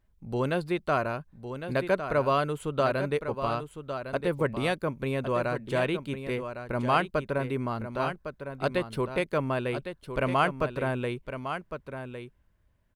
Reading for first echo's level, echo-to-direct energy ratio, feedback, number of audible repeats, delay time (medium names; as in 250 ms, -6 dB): -9.0 dB, -9.0 dB, no regular repeats, 1, 1107 ms